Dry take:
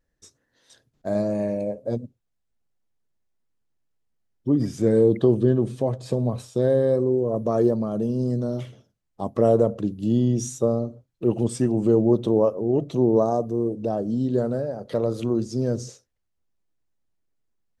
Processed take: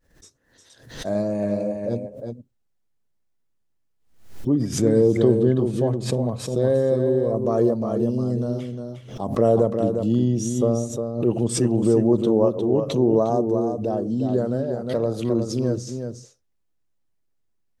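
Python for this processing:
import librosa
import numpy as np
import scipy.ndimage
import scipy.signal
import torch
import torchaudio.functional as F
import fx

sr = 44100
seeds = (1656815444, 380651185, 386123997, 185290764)

p1 = x + fx.echo_single(x, sr, ms=356, db=-6.5, dry=0)
y = fx.pre_swell(p1, sr, db_per_s=96.0)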